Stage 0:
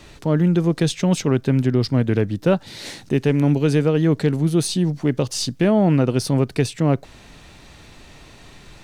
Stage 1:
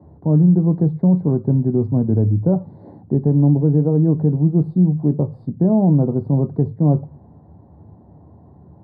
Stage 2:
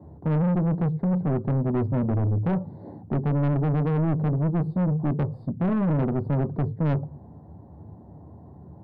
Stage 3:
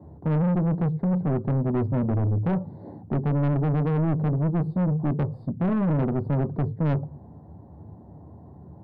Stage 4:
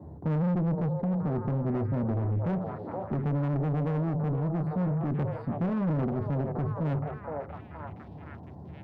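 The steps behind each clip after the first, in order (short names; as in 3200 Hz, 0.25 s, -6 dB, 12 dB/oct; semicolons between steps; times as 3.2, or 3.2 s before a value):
inverse Chebyshev low-pass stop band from 2300 Hz, stop band 40 dB; reverb RT60 0.35 s, pre-delay 3 ms, DRR 10 dB; maximiser -6 dB; gain -5.5 dB
soft clip -20.5 dBFS, distortion -7 dB
nothing audible
added harmonics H 6 -36 dB, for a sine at -20 dBFS; delay with a stepping band-pass 0.47 s, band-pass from 630 Hz, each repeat 0.7 oct, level -3 dB; limiter -25 dBFS, peak gain reduction 8.5 dB; gain +1 dB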